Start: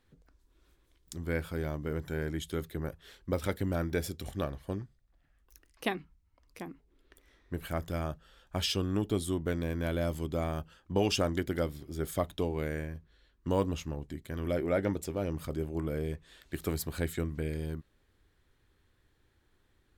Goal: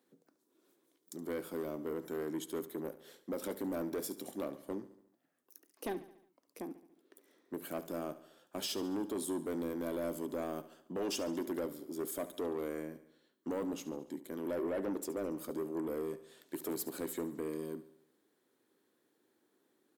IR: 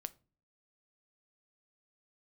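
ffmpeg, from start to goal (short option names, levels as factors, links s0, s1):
-filter_complex "[0:a]highpass=f=250:w=0.5412,highpass=f=250:w=1.3066,equalizer=f=2300:w=0.37:g=-13,alimiter=level_in=1.68:limit=0.0631:level=0:latency=1:release=13,volume=0.596,asoftclip=type=tanh:threshold=0.0158,asplit=2[s0][s1];[s1]aecho=0:1:71|142|213|284|355:0.168|0.0923|0.0508|0.0279|0.0154[s2];[s0][s2]amix=inputs=2:normalize=0,volume=1.78"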